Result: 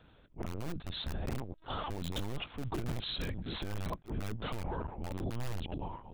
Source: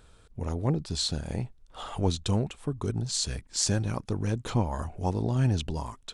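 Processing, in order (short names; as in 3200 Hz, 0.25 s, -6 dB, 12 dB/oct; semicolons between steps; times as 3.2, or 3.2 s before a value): reverse delay 0.537 s, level -12 dB; Doppler pass-by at 2.38, 20 m/s, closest 24 m; HPF 46 Hz 12 dB/oct; LPC vocoder at 8 kHz pitch kept; in parallel at -6 dB: wrapped overs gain 27 dB; on the sum: limiter -29 dBFS, peak gain reduction 18 dB; attack slew limiter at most 340 dB/s; gain +1 dB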